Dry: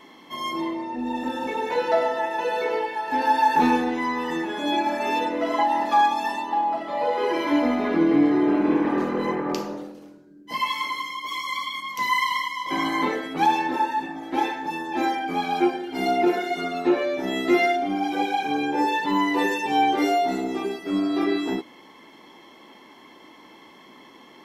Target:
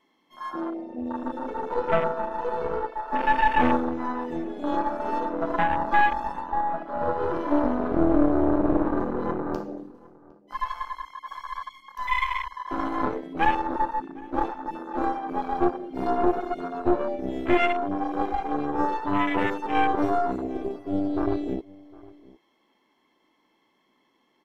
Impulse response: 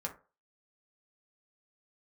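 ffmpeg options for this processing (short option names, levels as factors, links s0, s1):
-filter_complex "[0:a]aeval=exprs='0.376*(cos(1*acos(clip(val(0)/0.376,-1,1)))-cos(1*PI/2))+0.106*(cos(4*acos(clip(val(0)/0.376,-1,1)))-cos(4*PI/2))':c=same,afwtdn=0.0631,asplit=2[s0][s1];[s1]adelay=758,volume=0.0794,highshelf=f=4000:g=-17.1[s2];[s0][s2]amix=inputs=2:normalize=0,volume=0.708"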